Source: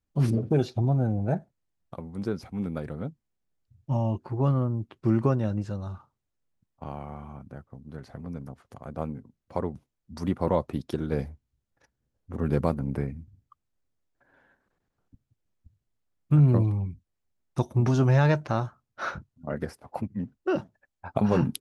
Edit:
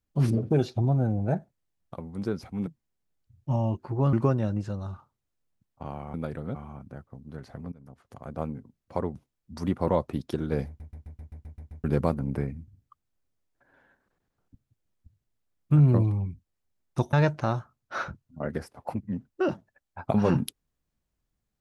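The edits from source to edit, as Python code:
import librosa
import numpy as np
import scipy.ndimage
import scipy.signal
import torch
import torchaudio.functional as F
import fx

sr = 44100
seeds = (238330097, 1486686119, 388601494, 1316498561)

y = fx.edit(x, sr, fx.move(start_s=2.67, length_s=0.41, to_s=7.15),
    fx.cut(start_s=4.54, length_s=0.6),
    fx.fade_in_from(start_s=8.32, length_s=0.48, floor_db=-22.0),
    fx.stutter_over(start_s=11.27, slice_s=0.13, count=9),
    fx.cut(start_s=17.73, length_s=0.47), tone=tone)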